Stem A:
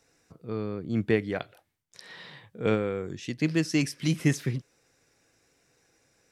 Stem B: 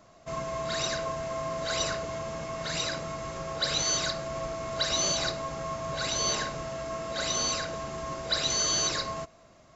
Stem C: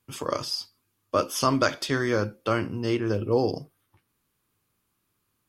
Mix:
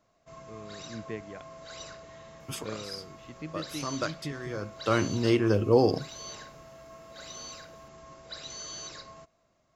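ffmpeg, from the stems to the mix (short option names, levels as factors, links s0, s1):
-filter_complex "[0:a]lowpass=f=4300:w=0.5412,lowpass=f=4300:w=1.3066,volume=0.2,asplit=2[s0][s1];[1:a]volume=0.2[s2];[2:a]adelay=2400,volume=1.26[s3];[s1]apad=whole_len=347713[s4];[s3][s4]sidechaincompress=threshold=0.00158:ratio=3:attack=5.4:release=374[s5];[s0][s2][s5]amix=inputs=3:normalize=0"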